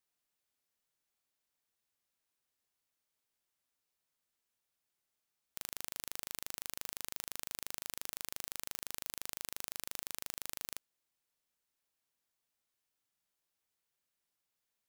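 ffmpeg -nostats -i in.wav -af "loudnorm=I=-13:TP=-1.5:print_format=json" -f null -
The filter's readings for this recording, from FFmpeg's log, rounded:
"input_i" : "-42.6",
"input_tp" : "-12.9",
"input_lra" : "5.9",
"input_thresh" : "-52.6",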